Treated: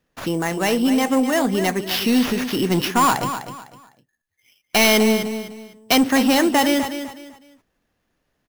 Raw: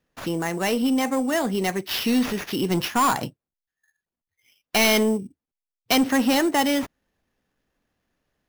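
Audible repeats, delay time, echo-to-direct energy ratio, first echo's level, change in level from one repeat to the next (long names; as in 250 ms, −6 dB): 3, 252 ms, −9.5 dB, −10.0 dB, −11.0 dB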